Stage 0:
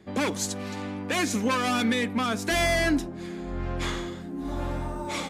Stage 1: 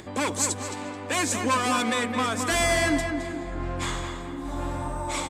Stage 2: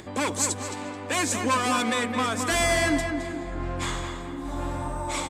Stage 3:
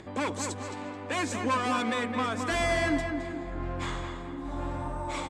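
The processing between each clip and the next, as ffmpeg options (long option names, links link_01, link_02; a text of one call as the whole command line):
ffmpeg -i in.wav -filter_complex "[0:a]equalizer=frequency=200:width_type=o:width=0.33:gain=-11,equalizer=frequency=400:width_type=o:width=0.33:gain=-4,equalizer=frequency=1000:width_type=o:width=0.33:gain=5,equalizer=frequency=8000:width_type=o:width=0.33:gain=11,acompressor=mode=upward:threshold=-35dB:ratio=2.5,asplit=2[link_01][link_02];[link_02]adelay=216,lowpass=frequency=2500:poles=1,volume=-5dB,asplit=2[link_03][link_04];[link_04]adelay=216,lowpass=frequency=2500:poles=1,volume=0.53,asplit=2[link_05][link_06];[link_06]adelay=216,lowpass=frequency=2500:poles=1,volume=0.53,asplit=2[link_07][link_08];[link_08]adelay=216,lowpass=frequency=2500:poles=1,volume=0.53,asplit=2[link_09][link_10];[link_10]adelay=216,lowpass=frequency=2500:poles=1,volume=0.53,asplit=2[link_11][link_12];[link_12]adelay=216,lowpass=frequency=2500:poles=1,volume=0.53,asplit=2[link_13][link_14];[link_14]adelay=216,lowpass=frequency=2500:poles=1,volume=0.53[link_15];[link_03][link_05][link_07][link_09][link_11][link_13][link_15]amix=inputs=7:normalize=0[link_16];[link_01][link_16]amix=inputs=2:normalize=0" out.wav
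ffmpeg -i in.wav -af anull out.wav
ffmpeg -i in.wav -af "aemphasis=mode=reproduction:type=50fm,volume=-3.5dB" out.wav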